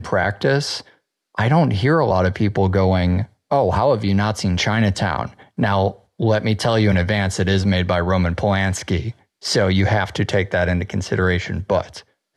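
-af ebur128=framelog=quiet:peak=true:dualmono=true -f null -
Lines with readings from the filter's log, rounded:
Integrated loudness:
  I:         -16.1 LUFS
  Threshold: -26.3 LUFS
Loudness range:
  LRA:         1.9 LU
  Threshold: -36.1 LUFS
  LRA low:   -17.0 LUFS
  LRA high:  -15.2 LUFS
True peak:
  Peak:       -5.3 dBFS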